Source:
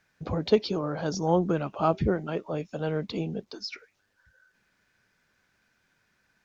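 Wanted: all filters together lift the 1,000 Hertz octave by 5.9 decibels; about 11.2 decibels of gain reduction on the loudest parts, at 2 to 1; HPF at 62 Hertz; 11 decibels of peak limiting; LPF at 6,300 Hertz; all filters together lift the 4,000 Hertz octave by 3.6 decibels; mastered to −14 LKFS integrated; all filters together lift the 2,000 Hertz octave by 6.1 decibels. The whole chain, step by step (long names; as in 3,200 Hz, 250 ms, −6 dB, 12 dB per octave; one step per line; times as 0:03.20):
high-pass filter 62 Hz
low-pass filter 6,300 Hz
parametric band 1,000 Hz +6.5 dB
parametric band 2,000 Hz +5 dB
parametric band 4,000 Hz +4 dB
downward compressor 2 to 1, threshold −35 dBFS
level +24.5 dB
brickwall limiter −3 dBFS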